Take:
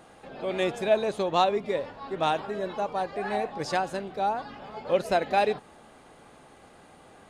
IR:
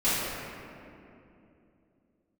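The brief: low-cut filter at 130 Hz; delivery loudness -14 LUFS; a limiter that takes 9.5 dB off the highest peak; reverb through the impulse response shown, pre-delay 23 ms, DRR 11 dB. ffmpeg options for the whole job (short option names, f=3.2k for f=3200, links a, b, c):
-filter_complex "[0:a]highpass=130,alimiter=limit=-19dB:level=0:latency=1,asplit=2[a][b];[1:a]atrim=start_sample=2205,adelay=23[c];[b][c]afir=irnorm=-1:irlink=0,volume=-25dB[d];[a][d]amix=inputs=2:normalize=0,volume=16.5dB"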